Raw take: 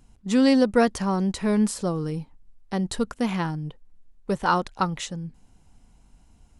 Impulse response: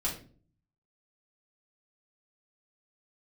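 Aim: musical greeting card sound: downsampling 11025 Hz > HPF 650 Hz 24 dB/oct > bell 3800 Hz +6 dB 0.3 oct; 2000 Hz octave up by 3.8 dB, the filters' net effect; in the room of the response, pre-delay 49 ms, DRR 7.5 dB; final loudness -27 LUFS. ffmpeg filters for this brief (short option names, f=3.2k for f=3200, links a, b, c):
-filter_complex "[0:a]equalizer=f=2k:t=o:g=5,asplit=2[a][b];[1:a]atrim=start_sample=2205,adelay=49[c];[b][c]afir=irnorm=-1:irlink=0,volume=-12.5dB[d];[a][d]amix=inputs=2:normalize=0,aresample=11025,aresample=44100,highpass=f=650:w=0.5412,highpass=f=650:w=1.3066,equalizer=f=3.8k:t=o:w=0.3:g=6,volume=1.5dB"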